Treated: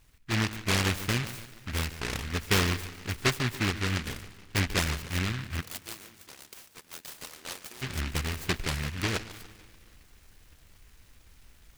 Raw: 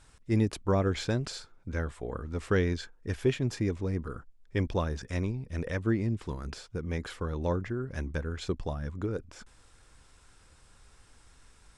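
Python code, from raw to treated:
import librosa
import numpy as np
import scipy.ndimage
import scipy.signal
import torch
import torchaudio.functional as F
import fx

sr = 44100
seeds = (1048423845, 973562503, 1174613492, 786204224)

y = fx.lowpass(x, sr, hz=3200.0, slope=6)
y = fx.echo_feedback(y, sr, ms=145, feedback_pct=47, wet_db=-14.5)
y = fx.rider(y, sr, range_db=10, speed_s=2.0)
y = fx.highpass(y, sr, hz=1200.0, slope=12, at=(5.6, 7.81), fade=0.02)
y = fx.rev_schroeder(y, sr, rt60_s=2.9, comb_ms=30, drr_db=19.5)
y = fx.noise_mod_delay(y, sr, seeds[0], noise_hz=1900.0, depth_ms=0.47)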